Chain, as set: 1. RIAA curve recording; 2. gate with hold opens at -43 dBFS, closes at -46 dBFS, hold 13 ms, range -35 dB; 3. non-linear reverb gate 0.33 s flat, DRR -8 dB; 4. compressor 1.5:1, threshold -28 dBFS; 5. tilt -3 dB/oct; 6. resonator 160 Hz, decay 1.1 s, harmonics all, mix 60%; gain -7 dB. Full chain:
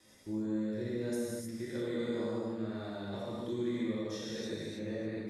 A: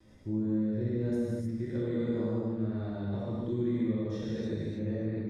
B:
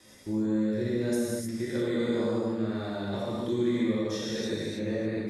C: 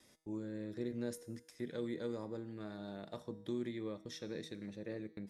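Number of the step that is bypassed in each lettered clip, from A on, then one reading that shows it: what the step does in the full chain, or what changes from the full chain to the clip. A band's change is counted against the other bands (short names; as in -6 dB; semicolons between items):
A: 1, 125 Hz band +10.0 dB; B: 6, loudness change +7.5 LU; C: 3, momentary loudness spread change +1 LU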